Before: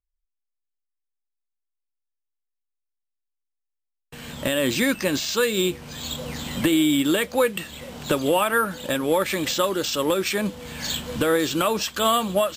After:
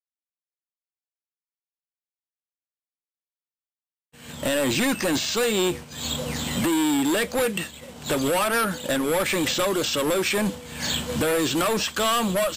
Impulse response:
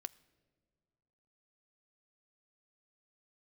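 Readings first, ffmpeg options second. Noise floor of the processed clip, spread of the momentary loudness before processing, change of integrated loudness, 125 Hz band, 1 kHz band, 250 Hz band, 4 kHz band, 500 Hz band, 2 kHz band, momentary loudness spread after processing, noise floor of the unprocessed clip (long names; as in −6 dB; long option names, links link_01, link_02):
below −85 dBFS, 11 LU, −0.5 dB, +0.5 dB, −1.5 dB, −1.0 dB, 0.0 dB, −1.5 dB, 0.0 dB, 7 LU, −81 dBFS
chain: -filter_complex "[0:a]highpass=frequency=58:width=0.5412,highpass=frequency=58:width=1.3066,equalizer=frequency=8200:width_type=o:width=0.76:gain=4.5,agate=range=-33dB:threshold=-30dB:ratio=3:detection=peak,acrossover=split=3600[link_01][link_02];[link_02]acompressor=threshold=-31dB:ratio=4:attack=1:release=60[link_03];[link_01][link_03]amix=inputs=2:normalize=0,acrossover=split=4300[link_04][link_05];[link_04]volume=24.5dB,asoftclip=hard,volume=-24.5dB[link_06];[link_06][link_05]amix=inputs=2:normalize=0,volume=4dB"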